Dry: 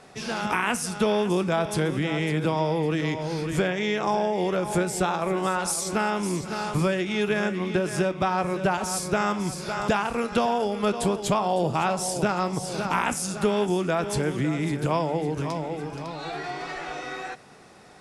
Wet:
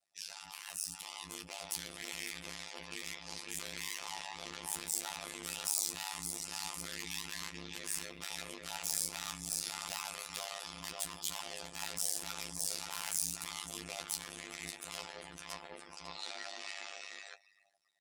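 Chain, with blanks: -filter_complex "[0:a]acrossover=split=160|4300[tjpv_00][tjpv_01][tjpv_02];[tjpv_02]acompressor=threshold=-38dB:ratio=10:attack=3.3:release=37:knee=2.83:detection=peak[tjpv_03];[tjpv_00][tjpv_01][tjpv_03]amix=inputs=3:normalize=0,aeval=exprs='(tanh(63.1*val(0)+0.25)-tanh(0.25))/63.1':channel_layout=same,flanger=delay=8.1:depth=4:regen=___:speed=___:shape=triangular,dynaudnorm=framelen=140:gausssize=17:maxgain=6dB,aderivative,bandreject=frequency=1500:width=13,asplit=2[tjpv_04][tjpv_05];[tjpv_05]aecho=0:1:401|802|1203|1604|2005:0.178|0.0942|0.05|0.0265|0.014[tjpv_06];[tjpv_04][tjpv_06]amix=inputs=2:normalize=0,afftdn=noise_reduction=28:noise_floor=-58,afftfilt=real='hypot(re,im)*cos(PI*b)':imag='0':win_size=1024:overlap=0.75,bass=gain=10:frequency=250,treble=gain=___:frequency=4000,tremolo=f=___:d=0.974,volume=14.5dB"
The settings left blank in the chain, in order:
-38, 1.4, -1, 100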